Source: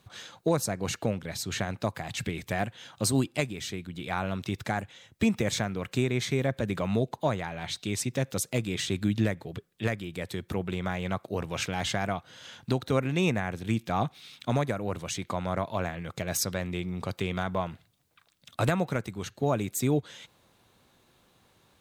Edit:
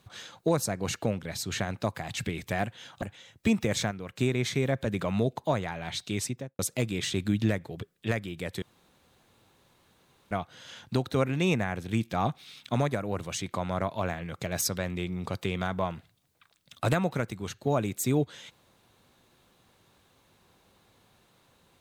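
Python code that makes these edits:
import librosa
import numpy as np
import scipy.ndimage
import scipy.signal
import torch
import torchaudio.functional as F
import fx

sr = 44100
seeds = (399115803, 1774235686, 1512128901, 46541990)

y = fx.studio_fade_out(x, sr, start_s=7.95, length_s=0.4)
y = fx.edit(y, sr, fx.cut(start_s=3.02, length_s=1.76),
    fx.clip_gain(start_s=5.67, length_s=0.28, db=-6.0),
    fx.room_tone_fill(start_s=10.38, length_s=1.69), tone=tone)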